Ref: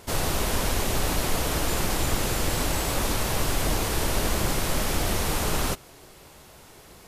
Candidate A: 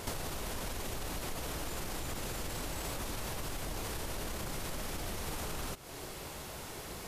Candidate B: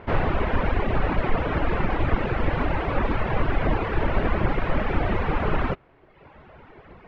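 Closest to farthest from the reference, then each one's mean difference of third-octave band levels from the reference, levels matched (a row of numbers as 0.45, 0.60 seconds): A, B; 4.0, 12.0 decibels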